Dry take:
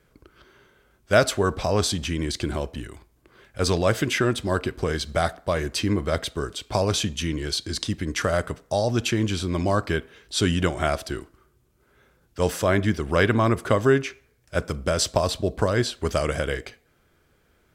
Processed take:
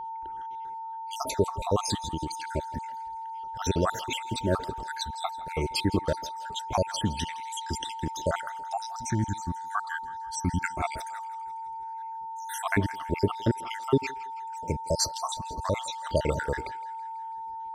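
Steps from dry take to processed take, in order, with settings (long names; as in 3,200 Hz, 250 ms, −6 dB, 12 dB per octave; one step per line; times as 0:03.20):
time-frequency cells dropped at random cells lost 72%
0:01.96–0:02.44: downward compressor, threshold −29 dBFS, peak gain reduction 6 dB
0:08.87–0:10.61: phaser with its sweep stopped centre 1,100 Hz, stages 4
steady tone 900 Hz −34 dBFS
feedback echo with a high-pass in the loop 164 ms, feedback 62%, high-pass 890 Hz, level −17 dB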